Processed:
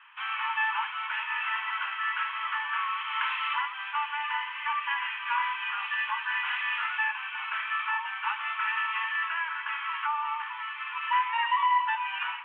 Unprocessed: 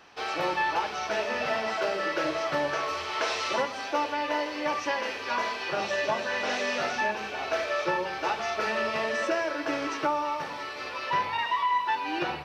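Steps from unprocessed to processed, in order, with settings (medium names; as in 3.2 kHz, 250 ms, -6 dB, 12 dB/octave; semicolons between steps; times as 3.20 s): Chebyshev band-pass 920–3200 Hz, order 5; trim +2.5 dB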